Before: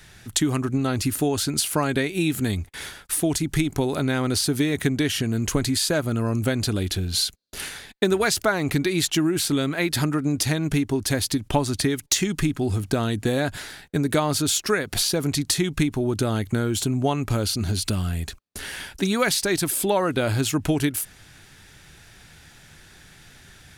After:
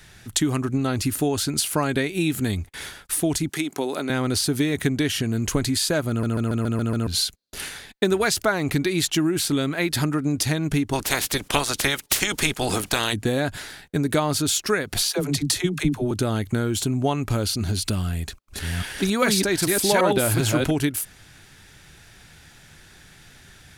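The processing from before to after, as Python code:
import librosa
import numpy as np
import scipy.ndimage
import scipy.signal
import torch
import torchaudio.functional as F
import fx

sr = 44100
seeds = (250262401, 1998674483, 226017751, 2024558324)

y = fx.bessel_highpass(x, sr, hz=300.0, order=4, at=(3.49, 4.1))
y = fx.spec_clip(y, sr, under_db=25, at=(10.92, 13.12), fade=0.02)
y = fx.dispersion(y, sr, late='lows', ms=70.0, hz=330.0, at=(15.1, 16.11))
y = fx.reverse_delay(y, sr, ms=394, wet_db=-1, at=(18.04, 20.71))
y = fx.edit(y, sr, fx.stutter_over(start_s=6.09, slice_s=0.14, count=7), tone=tone)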